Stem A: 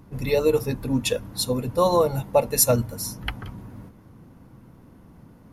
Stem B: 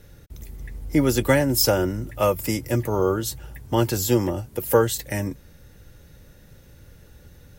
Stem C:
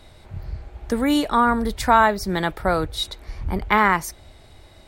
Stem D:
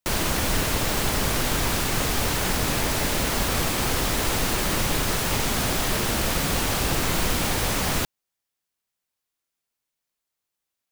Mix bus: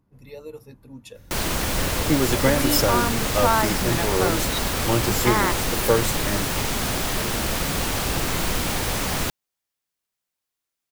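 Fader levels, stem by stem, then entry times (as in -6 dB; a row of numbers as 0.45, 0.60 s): -18.5, -2.0, -6.0, -0.5 dB; 0.00, 1.15, 1.55, 1.25 s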